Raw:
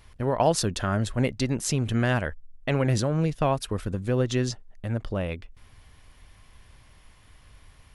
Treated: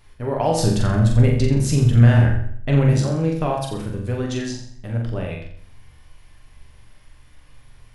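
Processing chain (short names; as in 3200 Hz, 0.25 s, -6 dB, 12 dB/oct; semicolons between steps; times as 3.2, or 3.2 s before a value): 0.57–2.93 low shelf 230 Hz +11.5 dB; flutter echo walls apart 7.4 m, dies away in 0.57 s; shoebox room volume 38 m³, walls mixed, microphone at 0.38 m; gain -2 dB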